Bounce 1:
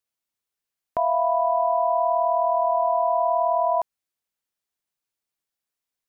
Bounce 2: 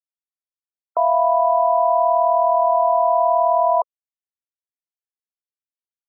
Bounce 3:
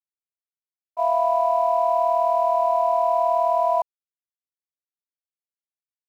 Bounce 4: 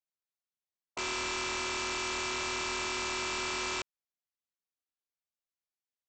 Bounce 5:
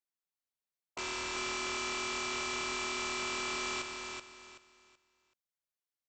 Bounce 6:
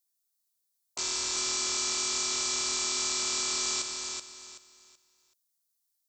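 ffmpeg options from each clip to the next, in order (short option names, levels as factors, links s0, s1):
-af "afftfilt=real='re*gte(hypot(re,im),0.0316)':imag='im*gte(hypot(re,im),0.0316)':win_size=1024:overlap=0.75,highpass=f=430:w=0.5412,highpass=f=430:w=1.3066,volume=1.78"
-af "aeval=exprs='sgn(val(0))*max(abs(val(0))-0.00668,0)':c=same,agate=range=0.0224:threshold=0.282:ratio=3:detection=peak,volume=1.19"
-af "alimiter=limit=0.0668:level=0:latency=1:release=11,aresample=16000,aeval=exprs='(mod(22.4*val(0)+1,2)-1)/22.4':c=same,aresample=44100,volume=0.708"
-af "aecho=1:1:379|758|1137|1516:0.562|0.157|0.0441|0.0123,volume=0.668"
-af "aexciter=amount=6.3:drive=3:freq=3800,volume=0.841"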